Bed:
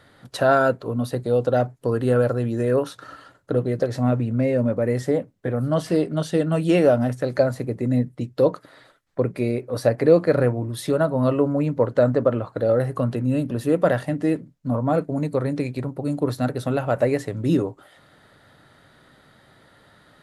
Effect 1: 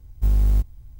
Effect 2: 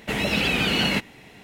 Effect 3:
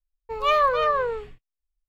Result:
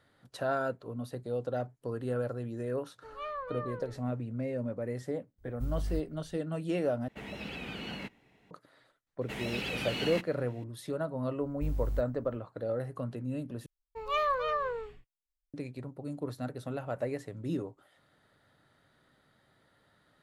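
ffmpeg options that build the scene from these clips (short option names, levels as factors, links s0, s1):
-filter_complex "[3:a]asplit=2[s0][s1];[1:a]asplit=2[s2][s3];[2:a]asplit=2[s4][s5];[0:a]volume=0.2[s6];[s0]lowpass=f=2100:p=1[s7];[s4]highshelf=f=3100:g=-8.5[s8];[s6]asplit=3[s9][s10][s11];[s9]atrim=end=7.084[s12];[s8]atrim=end=1.43,asetpts=PTS-STARTPTS,volume=0.15[s13];[s10]atrim=start=8.506:end=13.664[s14];[s1]atrim=end=1.88,asetpts=PTS-STARTPTS,volume=0.335[s15];[s11]atrim=start=15.536[s16];[s7]atrim=end=1.88,asetpts=PTS-STARTPTS,volume=0.126,afade=t=in:d=0.004:c=hsin,afade=t=out:st=1.876:d=0.004:c=hsin,adelay=2740[s17];[s2]atrim=end=0.99,asetpts=PTS-STARTPTS,volume=0.158,afade=t=in:d=0.004:c=hsin,afade=t=out:st=0.986:d=0.004:c=hsin,adelay=5380[s18];[s5]atrim=end=1.43,asetpts=PTS-STARTPTS,volume=0.211,afade=t=in:d=0.004:c=hsin,afade=t=out:st=1.426:d=0.004:c=hsin,adelay=9210[s19];[s3]atrim=end=0.99,asetpts=PTS-STARTPTS,volume=0.178,afade=t=in:d=0.004:c=hsin,afade=t=out:st=0.986:d=0.004:c=hsin,adelay=11390[s20];[s12][s13]acrossfade=d=0.004:c1=hsin:c2=hsin[s21];[s21][s14]acrossfade=d=0.004:c1=hsin:c2=hsin[s22];[s22][s15]acrossfade=d=0.004:c1=hsin:c2=hsin[s23];[s23][s16]acrossfade=d=0.004:c1=hsin:c2=hsin[s24];[s24][s17][s18][s19][s20]amix=inputs=5:normalize=0"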